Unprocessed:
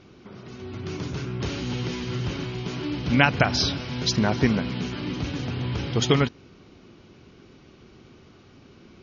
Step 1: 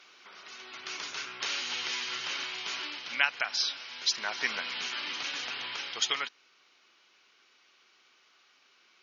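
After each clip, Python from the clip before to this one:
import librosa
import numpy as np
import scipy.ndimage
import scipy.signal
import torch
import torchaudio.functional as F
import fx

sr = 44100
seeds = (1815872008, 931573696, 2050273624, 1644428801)

y = scipy.signal.sosfilt(scipy.signal.butter(2, 1400.0, 'highpass', fs=sr, output='sos'), x)
y = fx.rider(y, sr, range_db=5, speed_s=0.5)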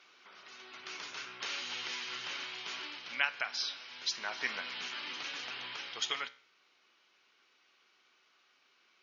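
y = fx.high_shelf(x, sr, hz=6100.0, db=-7.0)
y = fx.comb_fb(y, sr, f0_hz=63.0, decay_s=0.45, harmonics='all', damping=0.0, mix_pct=50)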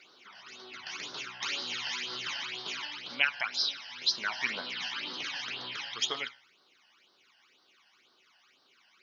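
y = fx.phaser_stages(x, sr, stages=12, low_hz=380.0, high_hz=2400.0, hz=2.0, feedback_pct=25)
y = y * 10.0 ** (7.0 / 20.0)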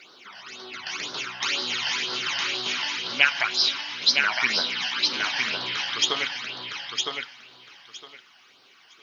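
y = fx.echo_feedback(x, sr, ms=961, feedback_pct=18, wet_db=-4.0)
y = y * 10.0 ** (8.0 / 20.0)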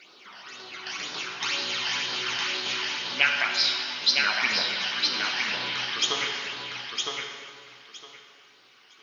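y = fx.rev_plate(x, sr, seeds[0], rt60_s=2.1, hf_ratio=0.75, predelay_ms=0, drr_db=2.5)
y = y * 10.0 ** (-3.0 / 20.0)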